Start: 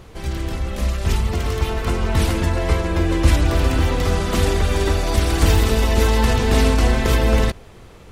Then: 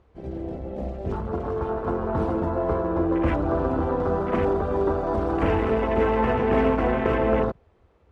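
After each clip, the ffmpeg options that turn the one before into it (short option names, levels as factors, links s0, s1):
-af "afwtdn=0.0501,bandpass=f=600:t=q:w=0.54:csg=0,volume=1.12"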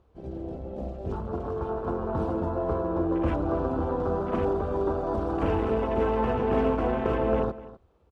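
-af "equalizer=f=2000:t=o:w=0.54:g=-8,aecho=1:1:252:0.133,volume=0.668"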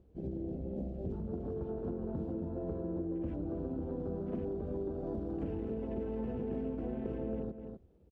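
-af "firequalizer=gain_entry='entry(110,0);entry(170,6);entry(1100,-18);entry(1700,-10)':delay=0.05:min_phase=1,acompressor=threshold=0.0178:ratio=6"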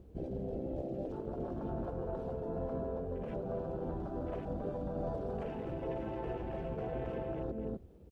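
-af "afftfilt=real='re*lt(hypot(re,im),0.0562)':imag='im*lt(hypot(re,im),0.0562)':win_size=1024:overlap=0.75,volume=2.37"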